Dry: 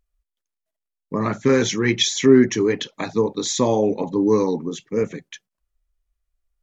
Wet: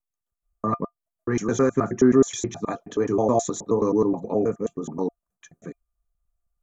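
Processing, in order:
slices reordered back to front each 106 ms, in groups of 6
flat-topped bell 3,200 Hz −15 dB
hollow resonant body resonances 690/1,200/2,400 Hz, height 12 dB, ringing for 95 ms
level −3 dB

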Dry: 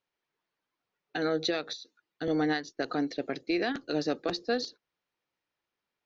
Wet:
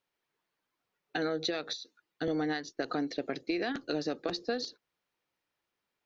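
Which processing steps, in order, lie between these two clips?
downward compressor, threshold −30 dBFS, peak gain reduction 7 dB
level +1.5 dB

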